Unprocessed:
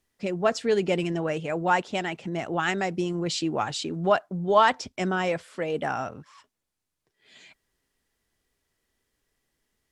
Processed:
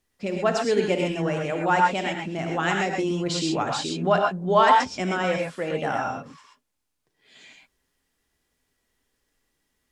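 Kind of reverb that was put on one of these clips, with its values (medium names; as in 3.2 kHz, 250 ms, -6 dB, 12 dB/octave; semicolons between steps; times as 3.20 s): gated-style reverb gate 150 ms rising, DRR 0.5 dB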